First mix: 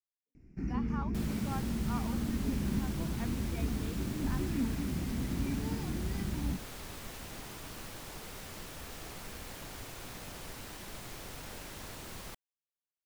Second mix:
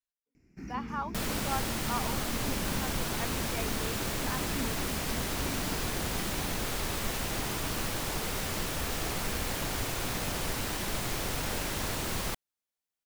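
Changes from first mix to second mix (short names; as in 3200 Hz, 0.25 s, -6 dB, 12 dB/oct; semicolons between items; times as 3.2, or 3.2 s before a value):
speech +7.5 dB; first sound: add tilt +2.5 dB/oct; second sound +12.0 dB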